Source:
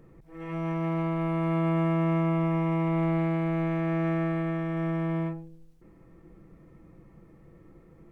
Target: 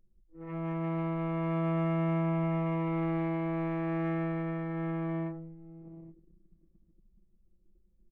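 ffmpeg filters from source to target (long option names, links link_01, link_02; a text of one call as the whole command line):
ffmpeg -i in.wav -af "aecho=1:1:819|1638|2457:0.237|0.0593|0.0148,anlmdn=1.58,volume=-4dB" out.wav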